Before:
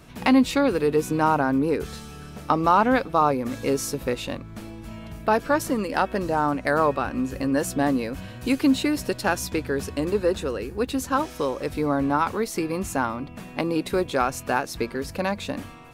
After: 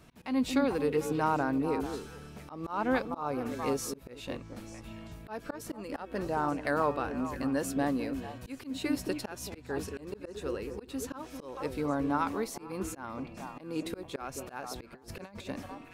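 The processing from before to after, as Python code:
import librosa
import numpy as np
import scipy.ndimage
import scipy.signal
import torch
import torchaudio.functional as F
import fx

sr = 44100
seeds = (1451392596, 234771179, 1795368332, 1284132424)

y = fx.echo_stepped(x, sr, ms=222, hz=340.0, octaves=1.4, feedback_pct=70, wet_db=-6)
y = fx.auto_swell(y, sr, attack_ms=233.0)
y = fx.over_compress(y, sr, threshold_db=-37.0, ratio=-0.5, at=(14.92, 15.47))
y = F.gain(torch.from_numpy(y), -8.0).numpy()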